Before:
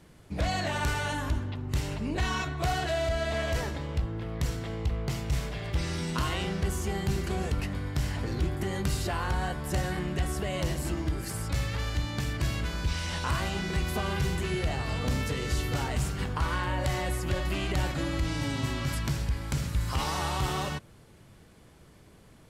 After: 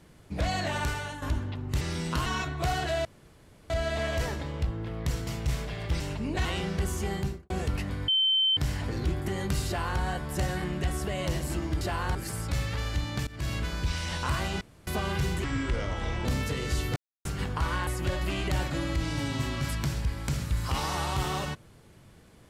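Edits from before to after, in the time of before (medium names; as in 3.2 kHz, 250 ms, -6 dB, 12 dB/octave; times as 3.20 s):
0.77–1.22 s: fade out linear, to -10 dB
1.81–2.26 s: swap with 5.84–6.29 s
3.05 s: insert room tone 0.65 s
4.62–5.11 s: delete
6.98–7.34 s: studio fade out
7.92 s: add tone 3.09 kHz -21 dBFS 0.49 s
9.02–9.36 s: copy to 11.16 s
12.28–12.54 s: fade in, from -21 dB
13.62–13.88 s: room tone
14.45–15.05 s: speed 74%
15.76–16.05 s: mute
16.67–17.11 s: delete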